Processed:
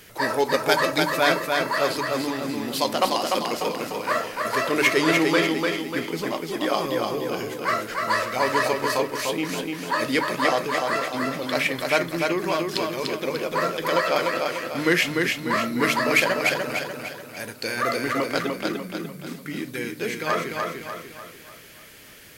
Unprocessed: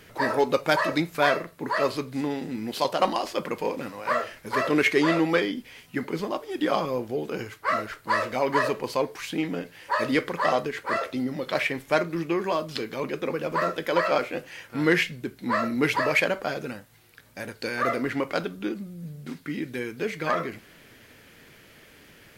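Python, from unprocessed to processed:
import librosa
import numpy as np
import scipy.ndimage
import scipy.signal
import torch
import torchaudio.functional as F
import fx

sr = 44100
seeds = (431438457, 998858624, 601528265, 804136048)

y = fx.high_shelf(x, sr, hz=3800.0, db=10.0)
y = fx.hum_notches(y, sr, base_hz=50, count=6)
y = fx.echo_feedback(y, sr, ms=296, feedback_pct=46, wet_db=-3.5)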